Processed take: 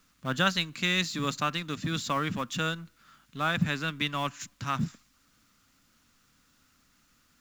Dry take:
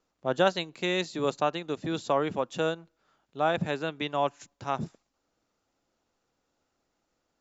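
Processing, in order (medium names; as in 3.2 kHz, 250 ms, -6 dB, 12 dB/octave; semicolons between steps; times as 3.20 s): companding laws mixed up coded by mu; high-order bell 550 Hz -14.5 dB; trim +4 dB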